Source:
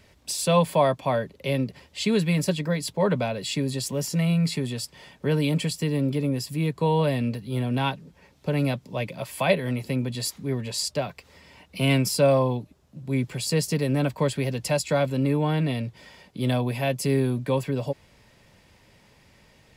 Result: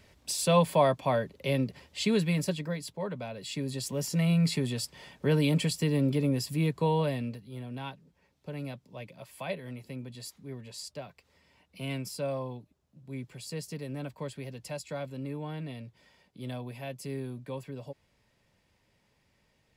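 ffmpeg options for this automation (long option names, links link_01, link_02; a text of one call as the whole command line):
ffmpeg -i in.wav -af "volume=9dB,afade=type=out:start_time=2:duration=1.13:silence=0.281838,afade=type=in:start_time=3.13:duration=1.33:silence=0.251189,afade=type=out:start_time=6.6:duration=0.91:silence=0.251189" out.wav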